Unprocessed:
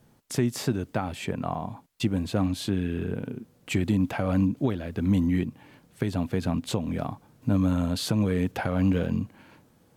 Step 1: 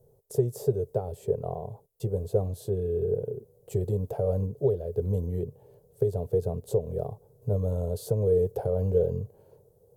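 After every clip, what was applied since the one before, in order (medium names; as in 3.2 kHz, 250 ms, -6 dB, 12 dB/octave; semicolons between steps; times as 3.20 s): FFT filter 130 Hz 0 dB, 290 Hz -23 dB, 420 Hz +12 dB, 1.2 kHz -20 dB, 2.3 kHz -30 dB, 3.4 kHz -21 dB, 14 kHz 0 dB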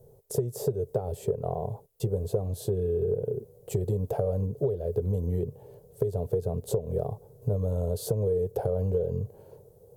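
compression 6:1, threshold -30 dBFS, peak gain reduction 12 dB; trim +6 dB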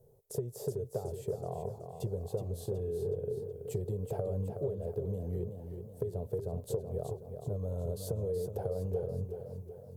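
modulated delay 373 ms, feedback 48%, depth 65 cents, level -7.5 dB; trim -8 dB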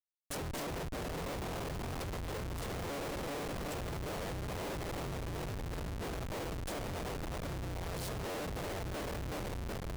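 cycle switcher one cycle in 3, inverted; Schmitt trigger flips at -48 dBFS; trim -2 dB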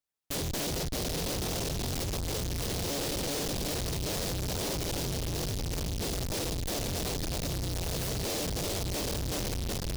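delay time shaken by noise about 4.5 kHz, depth 0.22 ms; trim +6.5 dB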